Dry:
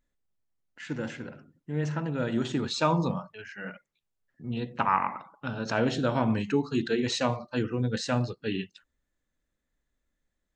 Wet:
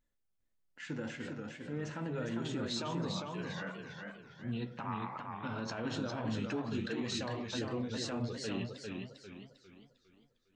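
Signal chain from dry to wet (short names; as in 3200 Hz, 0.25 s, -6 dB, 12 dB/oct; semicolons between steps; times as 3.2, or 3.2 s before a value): flange 0.44 Hz, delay 9 ms, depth 3.4 ms, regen -52%; compressor, threshold -31 dBFS, peak gain reduction 9 dB; limiter -29 dBFS, peak gain reduction 10 dB; warbling echo 0.403 s, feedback 40%, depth 121 cents, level -4 dB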